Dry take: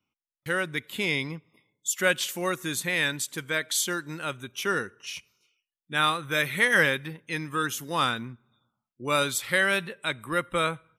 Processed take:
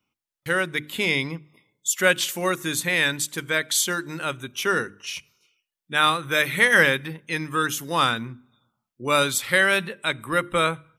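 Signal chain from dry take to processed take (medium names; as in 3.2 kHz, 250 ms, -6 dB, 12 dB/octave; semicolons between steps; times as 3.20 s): hum notches 50/100/150/200/250/300/350 Hz; trim +4.5 dB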